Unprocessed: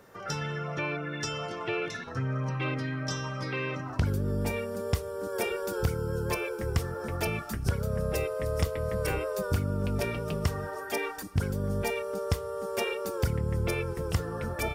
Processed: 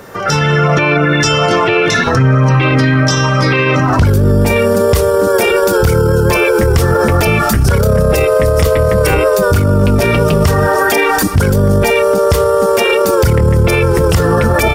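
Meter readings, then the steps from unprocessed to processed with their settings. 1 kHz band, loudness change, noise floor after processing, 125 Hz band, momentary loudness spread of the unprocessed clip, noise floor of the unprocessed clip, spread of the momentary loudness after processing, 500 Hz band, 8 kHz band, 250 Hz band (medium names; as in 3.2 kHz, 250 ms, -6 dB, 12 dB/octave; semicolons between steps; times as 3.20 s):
+22.0 dB, +20.5 dB, -13 dBFS, +19.5 dB, 4 LU, -39 dBFS, 1 LU, +21.5 dB, +19.5 dB, +20.5 dB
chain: level rider gain up to 11.5 dB; loudness maximiser +23 dB; trim -2.5 dB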